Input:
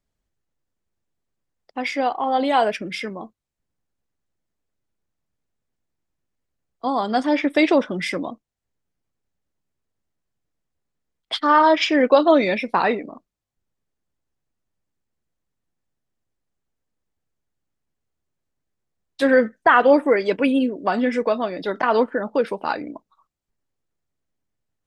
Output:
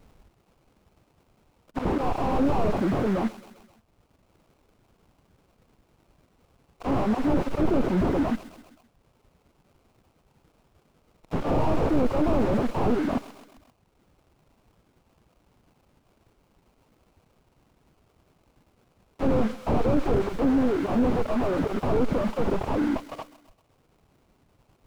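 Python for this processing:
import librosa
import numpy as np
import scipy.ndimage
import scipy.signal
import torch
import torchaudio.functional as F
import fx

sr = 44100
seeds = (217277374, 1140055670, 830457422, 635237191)

p1 = fx.cheby_harmonics(x, sr, harmonics=(8,), levels_db=(-14,), full_scale_db=-2.0)
p2 = fx.over_compress(p1, sr, threshold_db=-42.0, ratio=-1.0)
p3 = p1 + (p2 * librosa.db_to_amplitude(-1.5))
p4 = fx.auto_swell(p3, sr, attack_ms=100.0)
p5 = fx.dereverb_blind(p4, sr, rt60_s=0.96)
p6 = fx.sample_hold(p5, sr, seeds[0], rate_hz=1800.0, jitter_pct=20)
p7 = 10.0 ** (-24.5 / 20.0) * np.tanh(p6 / 10.0 ** (-24.5 / 20.0))
p8 = p7 + fx.echo_feedback(p7, sr, ms=131, feedback_pct=59, wet_db=-22.5, dry=0)
p9 = fx.slew_limit(p8, sr, full_power_hz=18.0)
y = p9 * librosa.db_to_amplitude(7.5)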